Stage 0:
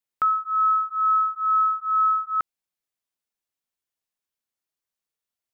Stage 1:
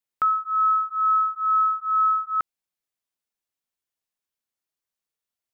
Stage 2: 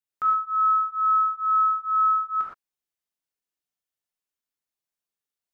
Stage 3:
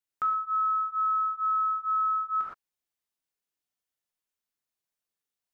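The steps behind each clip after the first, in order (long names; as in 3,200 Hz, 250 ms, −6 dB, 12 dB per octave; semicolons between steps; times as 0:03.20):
no processing that can be heard
reverb whose tail is shaped and stops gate 140 ms flat, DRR −3.5 dB; level −8 dB
downward compressor, threshold −25 dBFS, peak gain reduction 7 dB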